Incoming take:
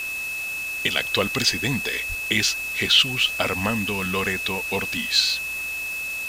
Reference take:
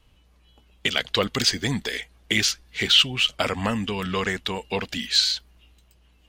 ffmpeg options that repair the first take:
-filter_complex "[0:a]bandreject=f=2600:w=30,asplit=3[s0][s1][s2];[s0]afade=t=out:st=2.08:d=0.02[s3];[s1]highpass=f=140:w=0.5412,highpass=f=140:w=1.3066,afade=t=in:st=2.08:d=0.02,afade=t=out:st=2.2:d=0.02[s4];[s2]afade=t=in:st=2.2:d=0.02[s5];[s3][s4][s5]amix=inputs=3:normalize=0,afwtdn=0.013"

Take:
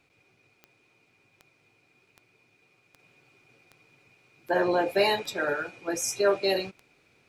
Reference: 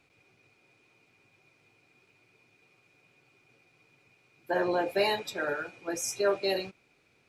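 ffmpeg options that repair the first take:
-af "adeclick=t=4,asetnsamples=n=441:p=0,asendcmd='2.99 volume volume -3.5dB',volume=1"

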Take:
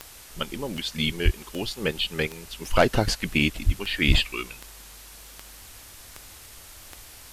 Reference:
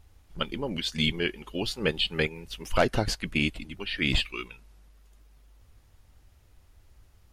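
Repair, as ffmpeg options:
-filter_complex "[0:a]adeclick=t=4,asplit=3[s0][s1][s2];[s0]afade=t=out:st=1.24:d=0.02[s3];[s1]highpass=f=140:w=0.5412,highpass=f=140:w=1.3066,afade=t=in:st=1.24:d=0.02,afade=t=out:st=1.36:d=0.02[s4];[s2]afade=t=in:st=1.36:d=0.02[s5];[s3][s4][s5]amix=inputs=3:normalize=0,asplit=3[s6][s7][s8];[s6]afade=t=out:st=3.65:d=0.02[s9];[s7]highpass=f=140:w=0.5412,highpass=f=140:w=1.3066,afade=t=in:st=3.65:d=0.02,afade=t=out:st=3.77:d=0.02[s10];[s8]afade=t=in:st=3.77:d=0.02[s11];[s9][s10][s11]amix=inputs=3:normalize=0,asplit=3[s12][s13][s14];[s12]afade=t=out:st=4.07:d=0.02[s15];[s13]highpass=f=140:w=0.5412,highpass=f=140:w=1.3066,afade=t=in:st=4.07:d=0.02,afade=t=out:st=4.19:d=0.02[s16];[s14]afade=t=in:st=4.19:d=0.02[s17];[s15][s16][s17]amix=inputs=3:normalize=0,afwtdn=0.0056,asetnsamples=n=441:p=0,asendcmd='2.61 volume volume -4dB',volume=1"

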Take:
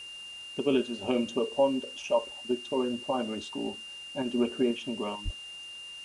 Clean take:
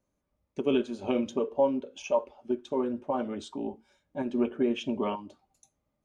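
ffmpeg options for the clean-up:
-filter_complex "[0:a]bandreject=f=2800:w=30,asplit=3[s0][s1][s2];[s0]afade=t=out:st=5.24:d=0.02[s3];[s1]highpass=f=140:w=0.5412,highpass=f=140:w=1.3066,afade=t=in:st=5.24:d=0.02,afade=t=out:st=5.36:d=0.02[s4];[s2]afade=t=in:st=5.36:d=0.02[s5];[s3][s4][s5]amix=inputs=3:normalize=0,afwtdn=0.0022,asetnsamples=n=441:p=0,asendcmd='4.71 volume volume 4dB',volume=1"

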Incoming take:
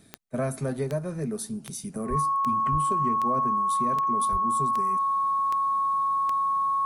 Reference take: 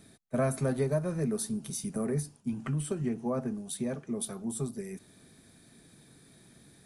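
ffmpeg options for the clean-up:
-filter_complex "[0:a]adeclick=t=4,bandreject=f=1100:w=30,asplit=3[s0][s1][s2];[s0]afade=t=out:st=2.09:d=0.02[s3];[s1]highpass=f=140:w=0.5412,highpass=f=140:w=1.3066,afade=t=in:st=2.09:d=0.02,afade=t=out:st=2.21:d=0.02[s4];[s2]afade=t=in:st=2.21:d=0.02[s5];[s3][s4][s5]amix=inputs=3:normalize=0,asplit=3[s6][s7][s8];[s6]afade=t=out:st=2.71:d=0.02[s9];[s7]highpass=f=140:w=0.5412,highpass=f=140:w=1.3066,afade=t=in:st=2.71:d=0.02,afade=t=out:st=2.83:d=0.02[s10];[s8]afade=t=in:st=2.83:d=0.02[s11];[s9][s10][s11]amix=inputs=3:normalize=0,asplit=3[s12][s13][s14];[s12]afade=t=out:st=4.31:d=0.02[s15];[s13]highpass=f=140:w=0.5412,highpass=f=140:w=1.3066,afade=t=in:st=4.31:d=0.02,afade=t=out:st=4.43:d=0.02[s16];[s14]afade=t=in:st=4.43:d=0.02[s17];[s15][s16][s17]amix=inputs=3:normalize=0"

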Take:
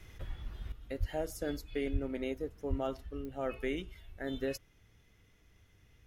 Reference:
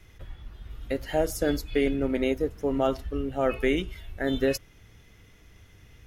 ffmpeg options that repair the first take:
-filter_complex "[0:a]adeclick=t=4,asplit=3[s0][s1][s2];[s0]afade=t=out:st=0.99:d=0.02[s3];[s1]highpass=f=140:w=0.5412,highpass=f=140:w=1.3066,afade=t=in:st=0.99:d=0.02,afade=t=out:st=1.11:d=0.02[s4];[s2]afade=t=in:st=1.11:d=0.02[s5];[s3][s4][s5]amix=inputs=3:normalize=0,asplit=3[s6][s7][s8];[s6]afade=t=out:st=1.92:d=0.02[s9];[s7]highpass=f=140:w=0.5412,highpass=f=140:w=1.3066,afade=t=in:st=1.92:d=0.02,afade=t=out:st=2.04:d=0.02[s10];[s8]afade=t=in:st=2.04:d=0.02[s11];[s9][s10][s11]amix=inputs=3:normalize=0,asplit=3[s12][s13][s14];[s12]afade=t=out:st=2.69:d=0.02[s15];[s13]highpass=f=140:w=0.5412,highpass=f=140:w=1.3066,afade=t=in:st=2.69:d=0.02,afade=t=out:st=2.81:d=0.02[s16];[s14]afade=t=in:st=2.81:d=0.02[s17];[s15][s16][s17]amix=inputs=3:normalize=0,asetnsamples=n=441:p=0,asendcmd='0.72 volume volume 11dB',volume=1"

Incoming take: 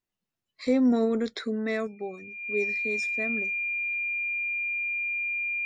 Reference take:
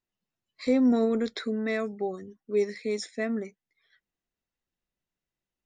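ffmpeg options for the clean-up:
-af "bandreject=f=2400:w=30,asetnsamples=n=441:p=0,asendcmd='1.87 volume volume 4.5dB',volume=1"

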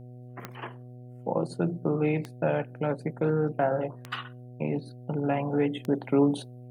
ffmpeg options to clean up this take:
-af "adeclick=t=4,bandreject=f=123.6:t=h:w=4,bandreject=f=247.2:t=h:w=4,bandreject=f=370.8:t=h:w=4,bandreject=f=494.4:t=h:w=4,bandreject=f=618:t=h:w=4,bandreject=f=741.6:t=h:w=4"

